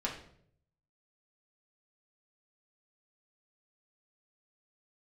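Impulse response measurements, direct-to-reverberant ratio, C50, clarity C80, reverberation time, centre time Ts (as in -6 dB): -4.0 dB, 7.0 dB, 11.0 dB, 0.65 s, 24 ms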